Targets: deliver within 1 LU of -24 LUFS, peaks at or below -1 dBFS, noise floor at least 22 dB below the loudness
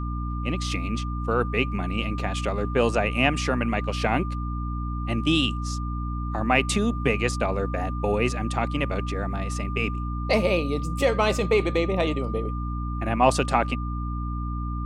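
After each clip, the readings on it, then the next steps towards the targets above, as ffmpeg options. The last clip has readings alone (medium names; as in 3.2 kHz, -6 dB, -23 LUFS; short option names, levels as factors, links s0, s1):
hum 60 Hz; highest harmonic 300 Hz; hum level -27 dBFS; steady tone 1.2 kHz; tone level -36 dBFS; loudness -25.5 LUFS; peak level -5.5 dBFS; loudness target -24.0 LUFS
-> -af "bandreject=f=60:t=h:w=6,bandreject=f=120:t=h:w=6,bandreject=f=180:t=h:w=6,bandreject=f=240:t=h:w=6,bandreject=f=300:t=h:w=6"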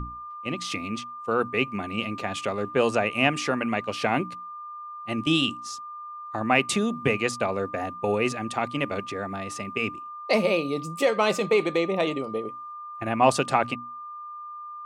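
hum not found; steady tone 1.2 kHz; tone level -36 dBFS
-> -af "bandreject=f=1200:w=30"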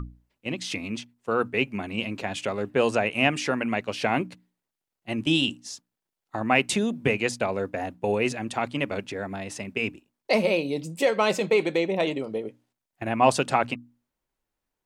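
steady tone not found; loudness -26.5 LUFS; peak level -6.0 dBFS; loudness target -24.0 LUFS
-> -af "volume=1.33"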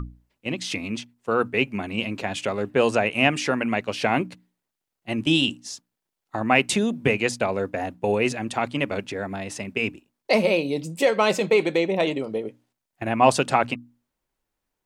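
loudness -24.0 LUFS; peak level -3.5 dBFS; noise floor -84 dBFS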